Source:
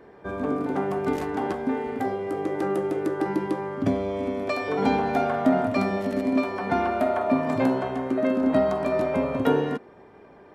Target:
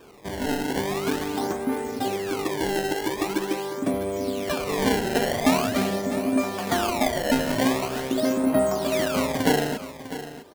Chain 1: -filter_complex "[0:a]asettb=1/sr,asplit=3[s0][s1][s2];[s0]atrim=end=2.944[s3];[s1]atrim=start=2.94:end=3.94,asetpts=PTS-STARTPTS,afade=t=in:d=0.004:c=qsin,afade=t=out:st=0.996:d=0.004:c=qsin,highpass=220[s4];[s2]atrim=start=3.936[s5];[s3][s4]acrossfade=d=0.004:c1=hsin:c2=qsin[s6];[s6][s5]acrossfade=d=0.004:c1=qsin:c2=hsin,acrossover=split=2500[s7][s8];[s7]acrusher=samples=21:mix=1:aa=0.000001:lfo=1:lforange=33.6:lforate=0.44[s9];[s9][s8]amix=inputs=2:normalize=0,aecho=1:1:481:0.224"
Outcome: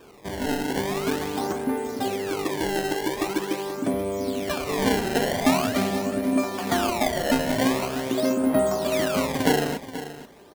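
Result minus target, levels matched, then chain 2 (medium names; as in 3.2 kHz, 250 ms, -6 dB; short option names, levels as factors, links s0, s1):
echo 170 ms early
-filter_complex "[0:a]asettb=1/sr,asplit=3[s0][s1][s2];[s0]atrim=end=2.944[s3];[s1]atrim=start=2.94:end=3.94,asetpts=PTS-STARTPTS,afade=t=in:d=0.004:c=qsin,afade=t=out:st=0.996:d=0.004:c=qsin,highpass=220[s4];[s2]atrim=start=3.936[s5];[s3][s4]acrossfade=d=0.004:c1=hsin:c2=qsin[s6];[s6][s5]acrossfade=d=0.004:c1=qsin:c2=hsin,acrossover=split=2500[s7][s8];[s7]acrusher=samples=21:mix=1:aa=0.000001:lfo=1:lforange=33.6:lforate=0.44[s9];[s9][s8]amix=inputs=2:normalize=0,aecho=1:1:651:0.224"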